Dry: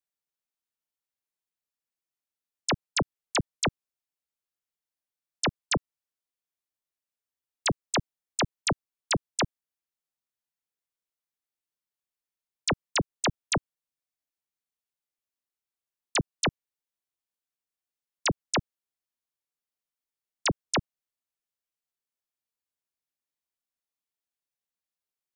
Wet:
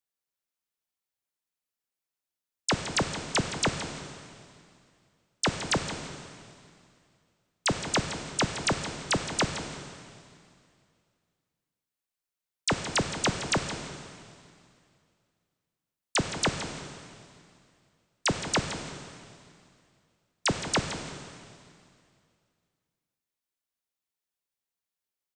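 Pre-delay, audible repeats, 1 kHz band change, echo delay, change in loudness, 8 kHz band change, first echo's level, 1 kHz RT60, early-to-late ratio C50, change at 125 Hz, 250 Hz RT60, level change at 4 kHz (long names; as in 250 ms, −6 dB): 7 ms, 1, +1.0 dB, 167 ms, 0.0 dB, +1.5 dB, −12.0 dB, 2.3 s, 6.0 dB, +1.0 dB, 2.4 s, +1.5 dB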